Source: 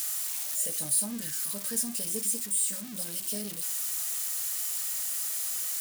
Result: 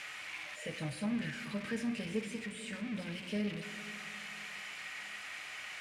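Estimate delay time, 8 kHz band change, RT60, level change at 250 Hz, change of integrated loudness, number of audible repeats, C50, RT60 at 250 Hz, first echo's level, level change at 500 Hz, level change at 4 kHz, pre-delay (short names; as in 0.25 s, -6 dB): none, -25.0 dB, 2.9 s, +3.5 dB, -11.5 dB, none, 10.5 dB, 3.1 s, none, +1.5 dB, -5.5 dB, 5 ms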